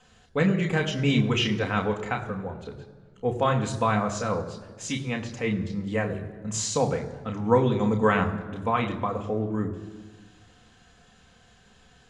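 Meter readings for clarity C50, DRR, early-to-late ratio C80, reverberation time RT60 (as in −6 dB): 11.5 dB, 2.5 dB, 12.5 dB, 1.5 s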